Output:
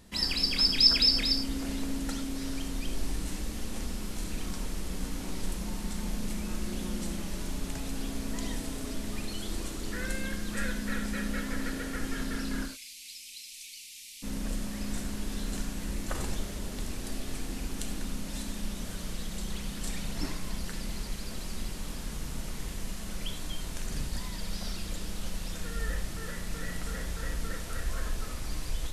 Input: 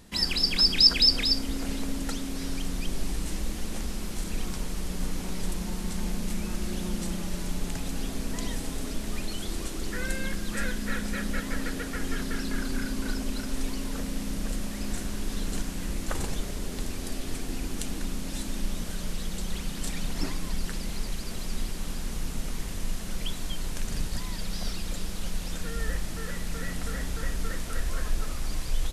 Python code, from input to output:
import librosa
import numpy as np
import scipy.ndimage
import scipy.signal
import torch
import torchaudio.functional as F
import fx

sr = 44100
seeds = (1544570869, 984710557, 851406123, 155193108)

y = fx.ellip_highpass(x, sr, hz=2300.0, order=4, stop_db=40, at=(12.65, 14.22), fade=0.02)
y = fx.rev_gated(y, sr, seeds[0], gate_ms=120, shape='flat', drr_db=5.5)
y = y * 10.0 ** (-3.5 / 20.0)